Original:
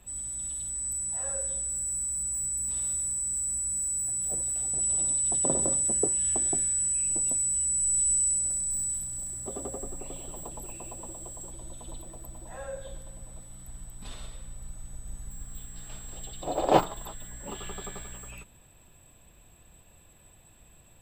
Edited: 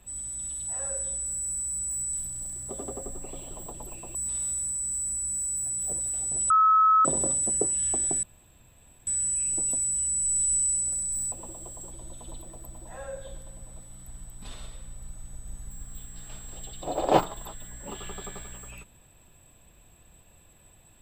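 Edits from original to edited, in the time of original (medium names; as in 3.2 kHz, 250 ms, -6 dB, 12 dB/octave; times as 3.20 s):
0.67–1.11 s: delete
4.92–5.47 s: bleep 1.29 kHz -16 dBFS
6.65 s: insert room tone 0.84 s
8.90–10.92 s: move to 2.57 s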